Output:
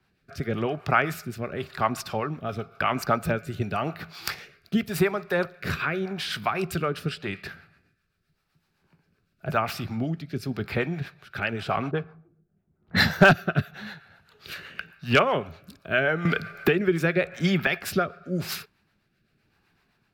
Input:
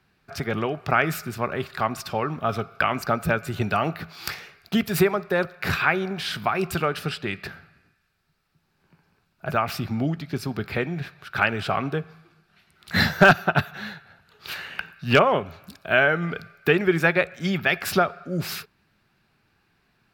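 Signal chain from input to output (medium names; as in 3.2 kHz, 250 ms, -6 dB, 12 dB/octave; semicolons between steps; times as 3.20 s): 11.91–13.09 s: level-controlled noise filter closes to 390 Hz, open at -18.5 dBFS; harmonic tremolo 7.8 Hz, depth 50%, crossover 510 Hz; rotary cabinet horn 0.9 Hz; 16.25–17.67 s: three bands compressed up and down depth 100%; trim +2 dB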